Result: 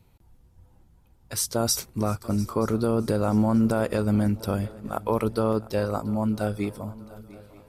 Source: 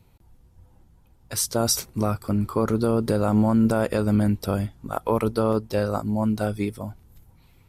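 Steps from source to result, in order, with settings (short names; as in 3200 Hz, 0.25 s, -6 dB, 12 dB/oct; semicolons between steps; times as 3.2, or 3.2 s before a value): swung echo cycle 0.929 s, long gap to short 3:1, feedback 36%, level -19.5 dB; gain -2 dB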